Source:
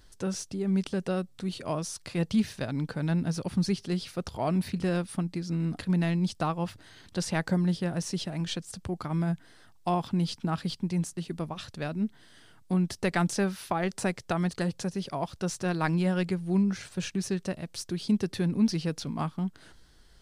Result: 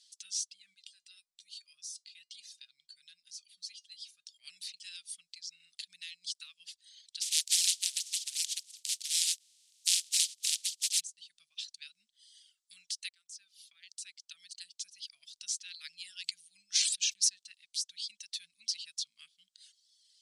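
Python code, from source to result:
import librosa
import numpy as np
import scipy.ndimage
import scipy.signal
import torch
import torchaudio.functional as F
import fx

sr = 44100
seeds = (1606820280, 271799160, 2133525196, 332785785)

y = fx.comb_fb(x, sr, f0_hz=410.0, decay_s=0.17, harmonics='all', damping=0.0, mix_pct=70, at=(0.73, 4.43), fade=0.02)
y = fx.spec_flatten(y, sr, power=0.1, at=(7.21, 10.99), fade=0.02)
y = fx.sustainer(y, sr, db_per_s=29.0, at=(16.21, 17.28), fade=0.02)
y = fx.edit(y, sr, fx.fade_in_from(start_s=13.09, length_s=2.57, floor_db=-19.5), tone=tone)
y = scipy.signal.sosfilt(scipy.signal.butter(4, 9300.0, 'lowpass', fs=sr, output='sos'), y)
y = fx.dereverb_blind(y, sr, rt60_s=1.3)
y = scipy.signal.sosfilt(scipy.signal.cheby2(4, 60, 970.0, 'highpass', fs=sr, output='sos'), y)
y = y * 10.0 ** (4.5 / 20.0)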